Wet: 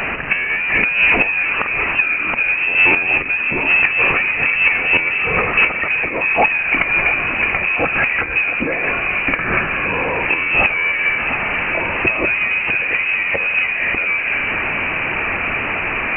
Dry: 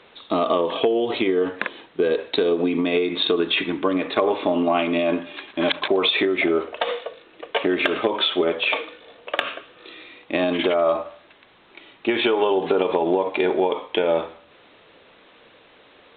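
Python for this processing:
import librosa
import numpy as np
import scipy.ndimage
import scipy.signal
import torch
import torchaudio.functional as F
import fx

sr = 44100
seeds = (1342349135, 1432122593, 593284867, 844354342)

p1 = fx.low_shelf(x, sr, hz=83.0, db=-2.5)
p2 = fx.level_steps(p1, sr, step_db=19)
p3 = p1 + (p2 * librosa.db_to_amplitude(1.0))
p4 = fx.gate_flip(p3, sr, shuts_db=-10.0, range_db=-26)
p5 = fx.power_curve(p4, sr, exponent=0.35)
p6 = fx.echo_banded(p5, sr, ms=684, feedback_pct=79, hz=630.0, wet_db=-7.5)
p7 = fx.freq_invert(p6, sr, carrier_hz=2900)
y = p7 * librosa.db_to_amplitude(-1.0)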